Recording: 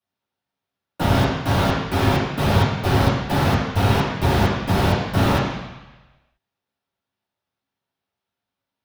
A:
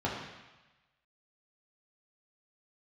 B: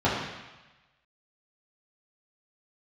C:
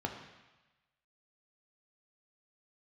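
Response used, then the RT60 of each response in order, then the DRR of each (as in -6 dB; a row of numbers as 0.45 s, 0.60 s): B; 1.1 s, 1.1 s, 1.1 s; -5.0 dB, -9.0 dB, 2.5 dB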